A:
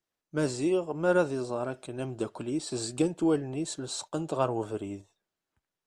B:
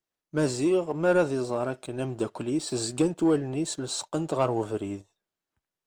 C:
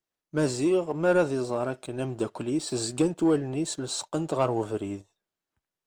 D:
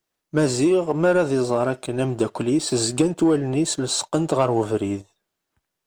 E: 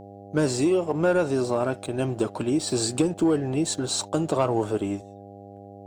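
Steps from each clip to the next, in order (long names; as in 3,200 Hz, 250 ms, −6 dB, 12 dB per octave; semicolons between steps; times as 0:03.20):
leveller curve on the samples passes 1
no processing that can be heard
downward compressor, threshold −23 dBFS, peak gain reduction 5.5 dB; level +8.5 dB
hum with harmonics 100 Hz, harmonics 8, −40 dBFS −1 dB per octave; level −3.5 dB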